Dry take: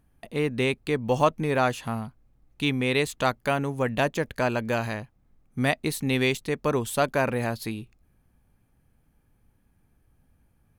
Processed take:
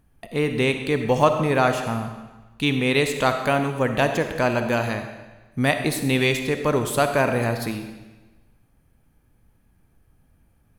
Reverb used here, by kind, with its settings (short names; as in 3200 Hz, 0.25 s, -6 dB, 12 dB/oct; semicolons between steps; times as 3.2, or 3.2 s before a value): digital reverb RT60 1.2 s, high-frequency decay 0.95×, pre-delay 15 ms, DRR 6.5 dB; gain +3.5 dB